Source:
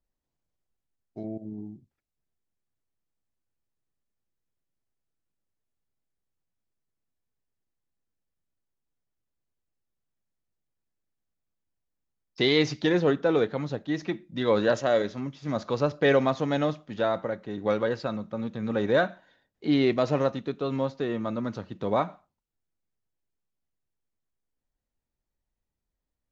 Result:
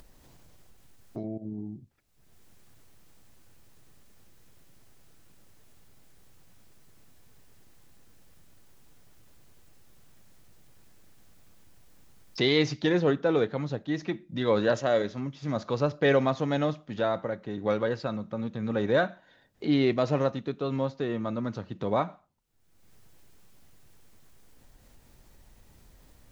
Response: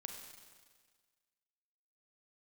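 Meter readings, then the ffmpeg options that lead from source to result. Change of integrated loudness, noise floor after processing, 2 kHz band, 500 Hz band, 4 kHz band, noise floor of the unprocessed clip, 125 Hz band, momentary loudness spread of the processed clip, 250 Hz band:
−1.5 dB, −60 dBFS, −1.5 dB, −1.5 dB, −1.5 dB, −85 dBFS, +1.0 dB, 12 LU, −1.0 dB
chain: -af "equalizer=frequency=120:width=1.6:gain=3,acompressor=mode=upward:threshold=-29dB:ratio=2.5,volume=-1.5dB"

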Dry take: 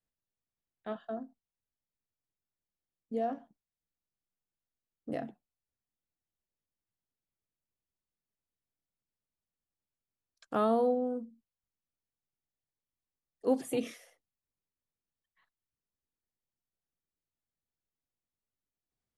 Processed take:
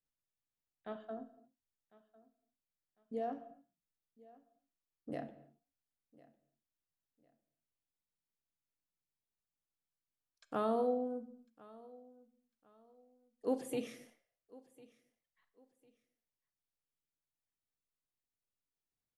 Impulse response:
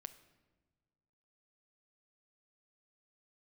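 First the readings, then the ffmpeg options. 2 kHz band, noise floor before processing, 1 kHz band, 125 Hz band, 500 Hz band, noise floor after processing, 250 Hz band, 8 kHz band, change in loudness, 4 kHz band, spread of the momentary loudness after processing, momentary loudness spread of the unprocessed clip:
−5.0 dB, below −85 dBFS, −5.5 dB, −5.0 dB, −5.5 dB, below −85 dBFS, −6.0 dB, −5.5 dB, −6.0 dB, −5.5 dB, 23 LU, 19 LU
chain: -filter_complex "[0:a]aecho=1:1:1051|2102:0.0794|0.0238[link_01];[1:a]atrim=start_sample=2205,afade=type=out:start_time=0.34:duration=0.01,atrim=end_sample=15435[link_02];[link_01][link_02]afir=irnorm=-1:irlink=0"

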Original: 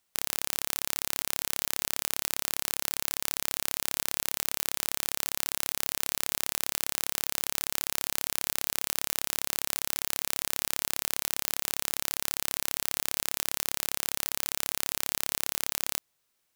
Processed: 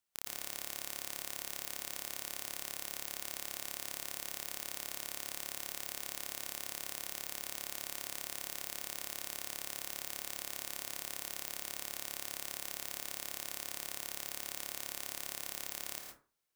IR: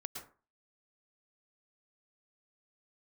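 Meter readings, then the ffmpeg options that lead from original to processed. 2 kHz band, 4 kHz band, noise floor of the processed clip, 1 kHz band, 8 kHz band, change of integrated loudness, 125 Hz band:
−9.0 dB, −9.5 dB, −50 dBFS, −9.5 dB, −10.0 dB, −10.0 dB, −12.5 dB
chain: -filter_complex "[1:a]atrim=start_sample=2205[link_01];[0:a][link_01]afir=irnorm=-1:irlink=0,volume=-7dB"

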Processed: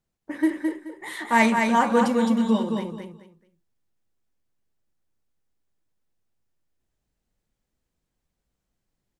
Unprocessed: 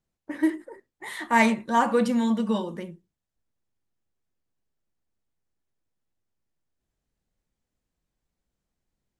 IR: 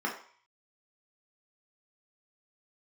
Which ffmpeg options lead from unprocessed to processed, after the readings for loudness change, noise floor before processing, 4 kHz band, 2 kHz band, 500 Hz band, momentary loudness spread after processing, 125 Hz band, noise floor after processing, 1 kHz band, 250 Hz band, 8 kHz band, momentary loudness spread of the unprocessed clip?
+2.0 dB, −85 dBFS, +2.5 dB, +2.5 dB, +2.5 dB, 17 LU, +3.0 dB, −82 dBFS, +2.5 dB, +2.5 dB, +2.5 dB, 19 LU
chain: -af "aecho=1:1:214|428|642:0.596|0.143|0.0343,volume=1dB"

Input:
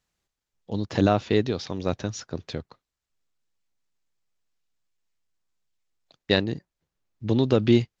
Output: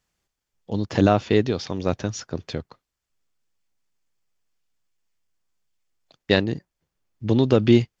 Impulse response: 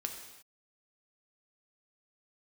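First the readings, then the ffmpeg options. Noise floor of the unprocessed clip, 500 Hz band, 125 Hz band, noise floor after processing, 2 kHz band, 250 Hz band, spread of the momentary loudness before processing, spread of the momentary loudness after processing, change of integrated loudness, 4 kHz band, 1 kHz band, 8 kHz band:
below −85 dBFS, +3.0 dB, +3.0 dB, −83 dBFS, +3.0 dB, +3.0 dB, 15 LU, 15 LU, +3.0 dB, +1.0 dB, +3.0 dB, can't be measured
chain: -af "bandreject=frequency=3900:width=15,volume=3dB"

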